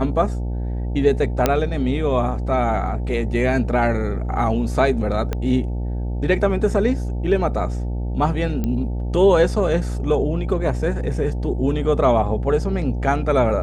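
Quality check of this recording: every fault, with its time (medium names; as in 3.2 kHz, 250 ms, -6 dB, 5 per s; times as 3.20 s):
buzz 60 Hz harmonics 15 -24 dBFS
1.46 s: pop -2 dBFS
5.33 s: pop -11 dBFS
8.64 s: pop -12 dBFS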